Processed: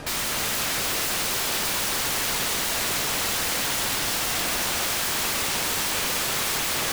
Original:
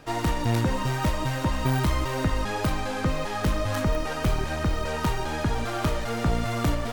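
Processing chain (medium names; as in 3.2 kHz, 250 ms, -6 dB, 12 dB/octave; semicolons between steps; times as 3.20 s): CVSD coder 64 kbps; in parallel at -3 dB: peak limiter -26.5 dBFS, peak gain reduction 11 dB; on the sum: integer overflow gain 30 dB; echo whose repeats swap between lows and highs 145 ms, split 2 kHz, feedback 85%, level -6 dB; trim +7.5 dB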